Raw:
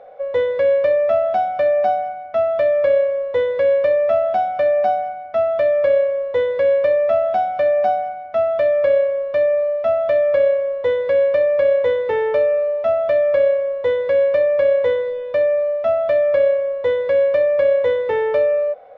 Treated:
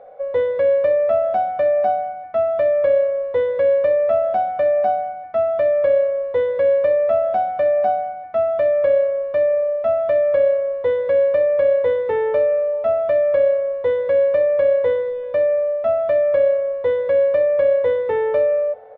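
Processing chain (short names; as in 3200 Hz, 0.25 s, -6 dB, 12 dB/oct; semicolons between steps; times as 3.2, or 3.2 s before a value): high shelf 2700 Hz -12 dB; outdoor echo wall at 110 m, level -27 dB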